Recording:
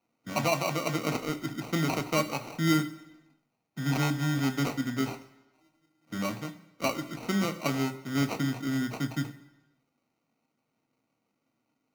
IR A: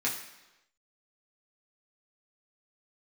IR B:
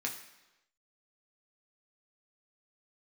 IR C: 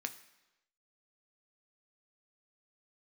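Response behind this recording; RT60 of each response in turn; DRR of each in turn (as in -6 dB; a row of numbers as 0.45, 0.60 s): C; 1.0, 1.0, 1.0 s; -5.0, -0.5, 7.0 dB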